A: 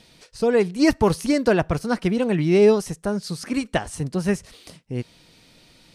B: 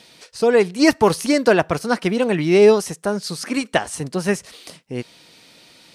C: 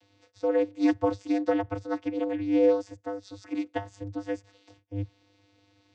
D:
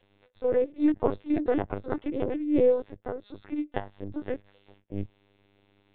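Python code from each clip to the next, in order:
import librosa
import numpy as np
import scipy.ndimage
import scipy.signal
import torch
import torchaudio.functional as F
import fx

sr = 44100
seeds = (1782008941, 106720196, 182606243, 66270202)

y1 = fx.highpass(x, sr, hz=360.0, slope=6)
y1 = y1 * librosa.db_to_amplitude(6.0)
y2 = fx.vocoder(y1, sr, bands=16, carrier='square', carrier_hz=99.7)
y2 = y2 * librosa.db_to_amplitude(-9.0)
y3 = fx.lpc_vocoder(y2, sr, seeds[0], excitation='pitch_kept', order=16)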